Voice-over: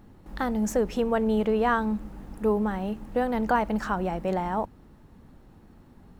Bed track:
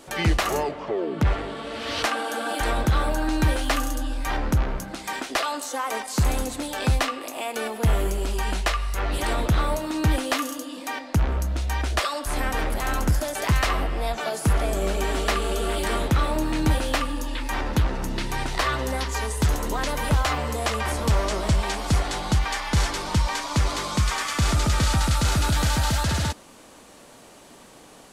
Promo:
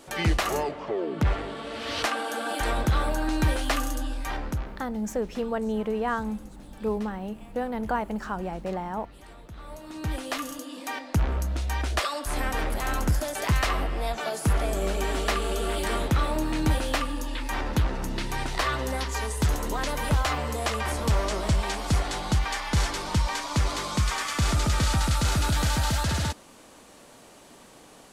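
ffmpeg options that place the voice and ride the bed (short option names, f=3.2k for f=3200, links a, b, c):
-filter_complex "[0:a]adelay=4400,volume=-4dB[a];[1:a]volume=18.5dB,afade=t=out:st=4.04:d=0.92:silence=0.0891251,afade=t=in:st=9.56:d=1.32:silence=0.0891251[b];[a][b]amix=inputs=2:normalize=0"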